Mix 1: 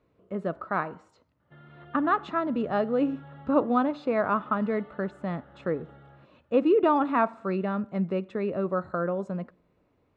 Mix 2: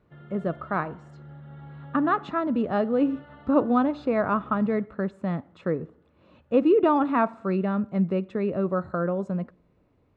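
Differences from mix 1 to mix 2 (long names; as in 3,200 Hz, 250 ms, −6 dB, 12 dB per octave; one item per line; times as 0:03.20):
background: entry −1.40 s
master: add low-shelf EQ 250 Hz +7 dB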